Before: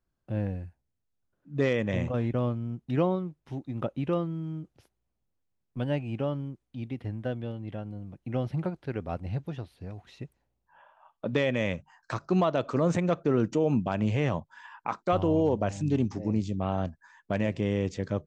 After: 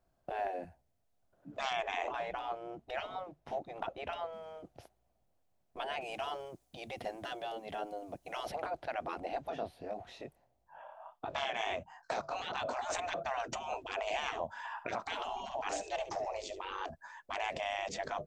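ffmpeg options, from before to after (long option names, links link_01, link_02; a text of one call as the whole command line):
ffmpeg -i in.wav -filter_complex "[0:a]asettb=1/sr,asplit=3[link_01][link_02][link_03];[link_01]atrim=end=1.704[link_04];[link_02]atrim=start=1.7:end=4.33,asetpts=PTS-STARTPTS,afade=type=in:duration=0.004:curve=qsin,afade=type=out:start_time=2.626:duration=0.004:curve=qsin,highshelf=frequency=5700:gain=-6.5[link_05];[link_03]atrim=start=4.326[link_06];[link_04][link_05]acrossfade=duration=0.004:curve1=hsin:curve2=qsin[link_07];[link_07][link_06]acrossfade=duration=0.004:curve1=qsin:curve2=hsin,asettb=1/sr,asplit=3[link_08][link_09][link_10];[link_08]atrim=end=6.014[link_11];[link_09]atrim=start=6.01:end=8.52,asetpts=PTS-STARTPTS,afade=type=in:duration=0.004:curve=qsin,afade=type=out:start_time=2.506:duration=0.004:curve=qsin,bass=frequency=250:gain=-1,treble=frequency=4000:gain=12[link_12];[link_10]atrim=start=8.516[link_13];[link_11][link_12]acrossfade=duration=0.004:curve1=hsin:curve2=qsin[link_14];[link_14][link_13]acrossfade=duration=0.004:curve1=qsin:curve2=hsin,asplit=3[link_15][link_16][link_17];[link_15]afade=type=out:start_time=9.49:duration=0.02[link_18];[link_16]flanger=delay=20:depth=7.9:speed=1.5,afade=type=in:start_time=9.49:duration=0.02,afade=type=out:start_time=12.81:duration=0.02[link_19];[link_17]afade=type=in:start_time=12.81:duration=0.02[link_20];[link_18][link_19][link_20]amix=inputs=3:normalize=0,asettb=1/sr,asplit=3[link_21][link_22][link_23];[link_21]atrim=end=14.004[link_24];[link_22]atrim=start=14:end=16.72,asetpts=PTS-STARTPTS,afade=type=in:duration=0.004:curve=qsin,afade=type=out:start_time=2.716:duration=0.004:curve=qsin,aecho=1:1:71:0.188,atrim=end_sample=119952[link_25];[link_23]atrim=start=16.716[link_26];[link_24][link_25]acrossfade=duration=0.004:curve1=hsin:curve2=qsin[link_27];[link_27][link_26]acrossfade=duration=0.004:curve1=qsin:curve2=hsin,afftfilt=real='re*lt(hypot(re,im),0.0398)':imag='im*lt(hypot(re,im),0.0398)':win_size=1024:overlap=0.75,equalizer=frequency=680:width=2.2:gain=14.5,volume=3dB" out.wav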